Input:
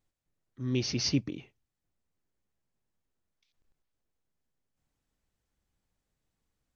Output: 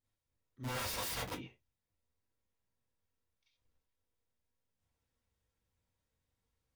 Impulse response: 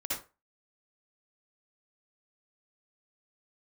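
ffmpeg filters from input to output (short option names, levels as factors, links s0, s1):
-filter_complex "[0:a]asplit=3[s0][s1][s2];[s0]afade=t=out:st=0.63:d=0.02[s3];[s1]aeval=exprs='(mod(35.5*val(0)+1,2)-1)/35.5':c=same,afade=t=in:st=0.63:d=0.02,afade=t=out:st=1.31:d=0.02[s4];[s2]afade=t=in:st=1.31:d=0.02[s5];[s3][s4][s5]amix=inputs=3:normalize=0[s6];[1:a]atrim=start_sample=2205,afade=t=out:st=0.22:d=0.01,atrim=end_sample=10143,asetrate=74970,aresample=44100[s7];[s6][s7]afir=irnorm=-1:irlink=0,volume=0.841"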